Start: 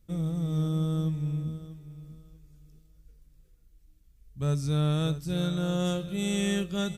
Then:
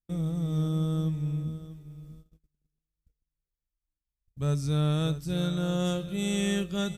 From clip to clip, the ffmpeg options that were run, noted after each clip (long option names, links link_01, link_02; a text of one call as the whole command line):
ffmpeg -i in.wav -af "agate=range=-30dB:threshold=-48dB:ratio=16:detection=peak" out.wav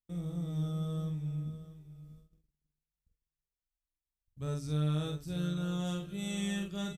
ffmpeg -i in.wav -filter_complex "[0:a]asplit=2[link_01][link_02];[link_02]adelay=46,volume=-4dB[link_03];[link_01][link_03]amix=inputs=2:normalize=0,volume=-8.5dB" out.wav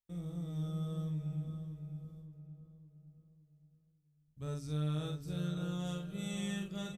ffmpeg -i in.wav -filter_complex "[0:a]asplit=2[link_01][link_02];[link_02]adelay=566,lowpass=frequency=1500:poles=1,volume=-8dB,asplit=2[link_03][link_04];[link_04]adelay=566,lowpass=frequency=1500:poles=1,volume=0.47,asplit=2[link_05][link_06];[link_06]adelay=566,lowpass=frequency=1500:poles=1,volume=0.47,asplit=2[link_07][link_08];[link_08]adelay=566,lowpass=frequency=1500:poles=1,volume=0.47,asplit=2[link_09][link_10];[link_10]adelay=566,lowpass=frequency=1500:poles=1,volume=0.47[link_11];[link_01][link_03][link_05][link_07][link_09][link_11]amix=inputs=6:normalize=0,volume=-4dB" out.wav